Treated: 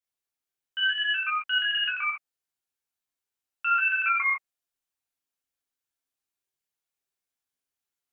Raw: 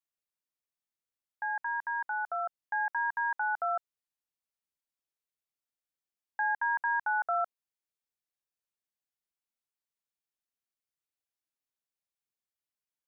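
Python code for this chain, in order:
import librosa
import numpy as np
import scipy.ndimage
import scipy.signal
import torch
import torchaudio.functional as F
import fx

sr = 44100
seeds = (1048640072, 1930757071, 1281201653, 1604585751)

y = fx.speed_glide(x, sr, from_pct=187, to_pct=135)
y = fx.notch(y, sr, hz=610.0, q=12.0)
y = fx.rev_gated(y, sr, seeds[0], gate_ms=90, shape='flat', drr_db=-4.5)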